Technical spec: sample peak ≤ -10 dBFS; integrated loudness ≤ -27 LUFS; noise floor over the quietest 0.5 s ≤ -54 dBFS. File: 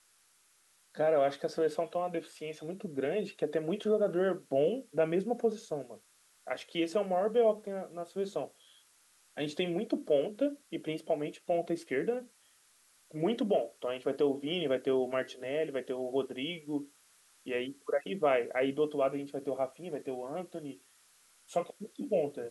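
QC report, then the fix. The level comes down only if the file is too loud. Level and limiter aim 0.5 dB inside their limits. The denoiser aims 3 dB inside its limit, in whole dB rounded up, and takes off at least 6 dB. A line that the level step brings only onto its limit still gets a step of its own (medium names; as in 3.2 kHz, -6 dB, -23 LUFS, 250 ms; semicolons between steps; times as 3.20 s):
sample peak -17.0 dBFS: pass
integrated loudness -33.5 LUFS: pass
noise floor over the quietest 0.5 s -67 dBFS: pass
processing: none needed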